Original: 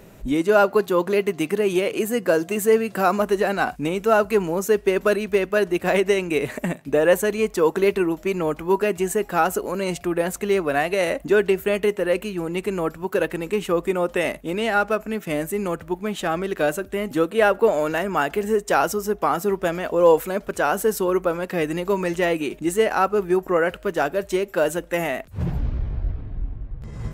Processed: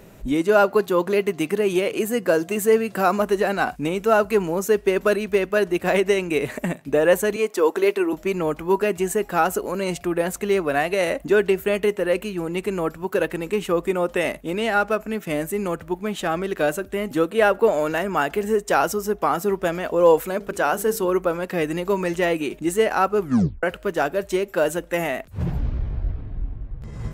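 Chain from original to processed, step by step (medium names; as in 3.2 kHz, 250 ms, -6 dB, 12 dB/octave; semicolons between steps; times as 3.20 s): 7.36–8.13 s: high-pass 260 Hz 24 dB/octave; 20.30–21.05 s: hum notches 50/100/150/200/250/300/350/400/450 Hz; 23.21 s: tape stop 0.42 s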